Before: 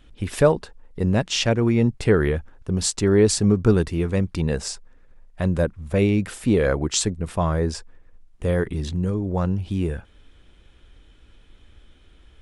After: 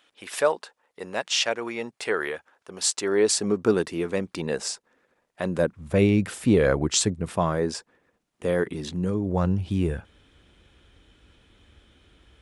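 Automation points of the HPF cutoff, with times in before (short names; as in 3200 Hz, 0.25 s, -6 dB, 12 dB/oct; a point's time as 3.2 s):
2.74 s 660 Hz
3.63 s 290 Hz
5.42 s 290 Hz
5.99 s 85 Hz
7.09 s 85 Hz
7.62 s 210 Hz
8.84 s 210 Hz
9.52 s 66 Hz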